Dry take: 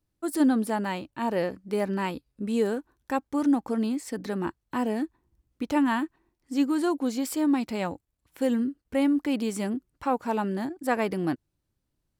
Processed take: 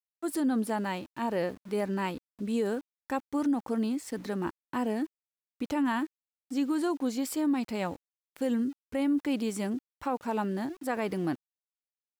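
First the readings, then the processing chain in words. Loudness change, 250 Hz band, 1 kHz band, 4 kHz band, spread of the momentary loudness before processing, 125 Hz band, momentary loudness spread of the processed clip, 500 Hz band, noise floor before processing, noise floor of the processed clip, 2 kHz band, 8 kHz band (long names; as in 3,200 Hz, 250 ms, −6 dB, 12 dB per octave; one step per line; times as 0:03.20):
−3.5 dB, −3.5 dB, −4.0 dB, −3.0 dB, 8 LU, −2.5 dB, 7 LU, −3.5 dB, −80 dBFS, below −85 dBFS, −3.5 dB, −2.5 dB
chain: centre clipping without the shift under −47 dBFS
brickwall limiter −18.5 dBFS, peak gain reduction 7.5 dB
level −2.5 dB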